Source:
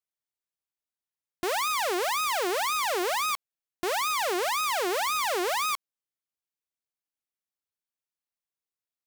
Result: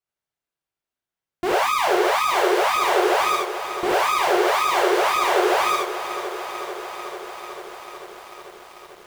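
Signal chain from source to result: treble shelf 3.8 kHz -11 dB; gated-style reverb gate 120 ms flat, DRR -5 dB; bit-crushed delay 443 ms, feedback 80%, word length 8-bit, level -11.5 dB; trim +3 dB

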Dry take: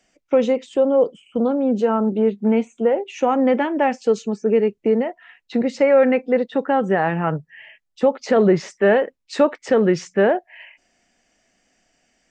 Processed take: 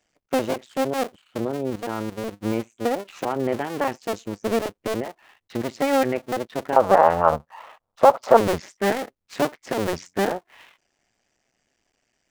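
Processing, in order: cycle switcher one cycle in 2, muted; 1.70–2.34 s: level held to a coarse grid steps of 12 dB; 6.76–8.37 s: high-order bell 810 Hz +14 dB; trim -4.5 dB

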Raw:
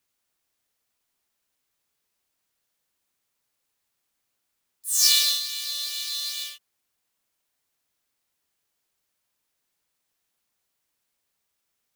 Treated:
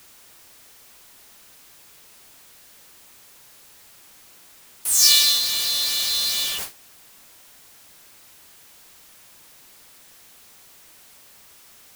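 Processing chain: jump at every zero crossing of -25 dBFS; gate with hold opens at -26 dBFS; trim +2.5 dB

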